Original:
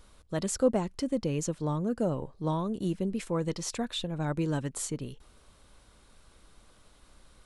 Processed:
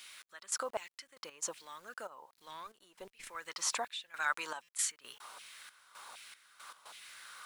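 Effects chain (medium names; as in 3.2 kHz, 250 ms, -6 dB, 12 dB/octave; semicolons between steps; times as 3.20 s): 4.10–4.62 s: tilt shelf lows -6 dB, about 730 Hz; compression 4:1, threshold -41 dBFS, peak gain reduction 18.5 dB; LFO high-pass saw down 1.3 Hz 840–2500 Hz; word length cut 12-bit, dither none; 2.31–3.36 s: valve stage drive 43 dB, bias 0.55; trance gate "xx..xxx..x.xxx" 116 bpm -12 dB; buffer glitch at 4.63 s, samples 256, times 8; trim +10 dB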